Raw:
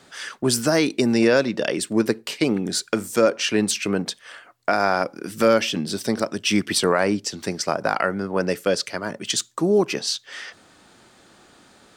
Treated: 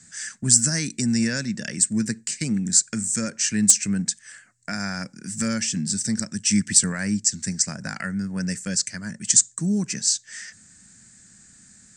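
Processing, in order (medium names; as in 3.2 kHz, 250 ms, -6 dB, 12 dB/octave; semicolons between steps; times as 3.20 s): FFT filter 210 Hz 0 dB, 360 Hz -21 dB, 800 Hz -22 dB, 1.2 kHz -20 dB, 1.7 kHz -4 dB, 3.3 kHz -16 dB, 7.9 kHz +13 dB, 12 kHz -21 dB; in parallel at -3 dB: integer overflow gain 3.5 dB; on the sum: trim -2 dB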